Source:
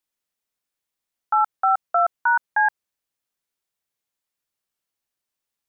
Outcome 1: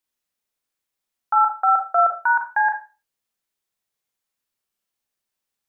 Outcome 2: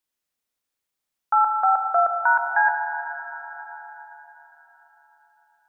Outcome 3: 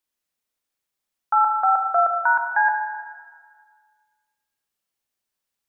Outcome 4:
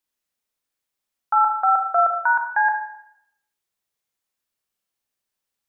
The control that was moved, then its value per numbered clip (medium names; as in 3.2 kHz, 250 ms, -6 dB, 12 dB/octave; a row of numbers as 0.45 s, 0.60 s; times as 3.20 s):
Schroeder reverb, RT60: 0.31 s, 4.3 s, 1.7 s, 0.76 s